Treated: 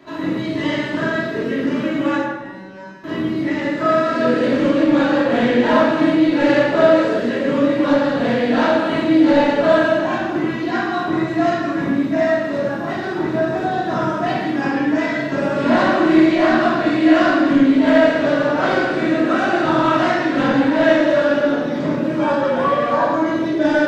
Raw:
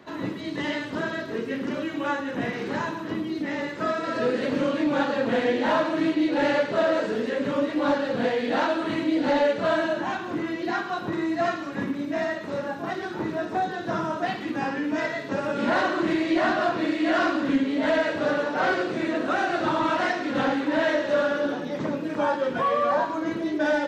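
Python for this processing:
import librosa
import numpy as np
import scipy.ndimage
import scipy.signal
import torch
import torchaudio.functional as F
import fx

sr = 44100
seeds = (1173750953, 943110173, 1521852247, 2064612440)

y = fx.comb_fb(x, sr, f0_hz=190.0, decay_s=0.63, harmonics='all', damping=0.0, mix_pct=100, at=(2.21, 3.04))
y = fx.room_shoebox(y, sr, seeds[0], volume_m3=670.0, walls='mixed', distance_m=2.9)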